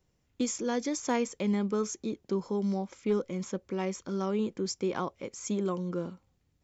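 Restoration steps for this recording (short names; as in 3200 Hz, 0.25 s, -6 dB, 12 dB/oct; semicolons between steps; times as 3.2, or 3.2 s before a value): clip repair -20 dBFS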